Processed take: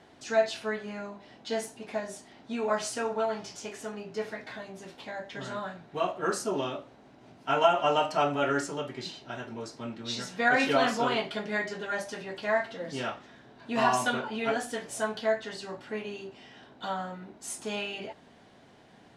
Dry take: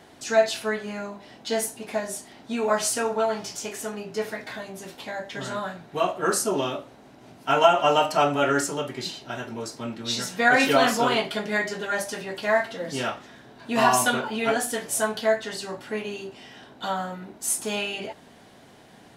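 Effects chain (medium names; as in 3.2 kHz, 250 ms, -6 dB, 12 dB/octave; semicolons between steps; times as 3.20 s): distance through air 62 m; trim -5 dB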